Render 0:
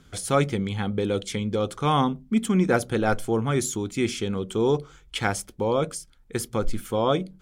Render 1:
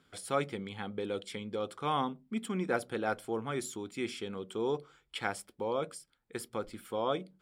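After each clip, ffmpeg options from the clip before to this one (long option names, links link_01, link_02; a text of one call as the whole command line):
ffmpeg -i in.wav -af "highpass=frequency=370:poles=1,highshelf=frequency=4600:gain=-5,bandreject=frequency=6300:width=5.1,volume=-7.5dB" out.wav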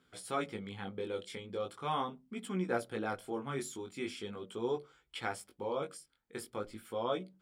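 ffmpeg -i in.wav -af "flanger=delay=16:depth=6:speed=0.41" out.wav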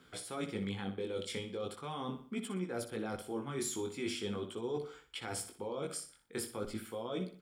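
ffmpeg -i in.wav -filter_complex "[0:a]areverse,acompressor=threshold=-43dB:ratio=6,areverse,aecho=1:1:61|122|183|244:0.282|0.0958|0.0326|0.0111,acrossover=split=480|3000[link_01][link_02][link_03];[link_02]acompressor=threshold=-55dB:ratio=2.5[link_04];[link_01][link_04][link_03]amix=inputs=3:normalize=0,volume=9dB" out.wav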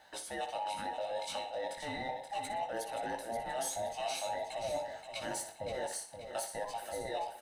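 ffmpeg -i in.wav -filter_complex "[0:a]afftfilt=real='real(if(between(b,1,1008),(2*floor((b-1)/48)+1)*48-b,b),0)':imag='imag(if(between(b,1,1008),(2*floor((b-1)/48)+1)*48-b,b),0)*if(between(b,1,1008),-1,1)':win_size=2048:overlap=0.75,asplit=2[link_01][link_02];[link_02]asoftclip=type=tanh:threshold=-38.5dB,volume=-6dB[link_03];[link_01][link_03]amix=inputs=2:normalize=0,aecho=1:1:527|1054|1581|2108|2635:0.398|0.167|0.0702|0.0295|0.0124,volume=-2dB" out.wav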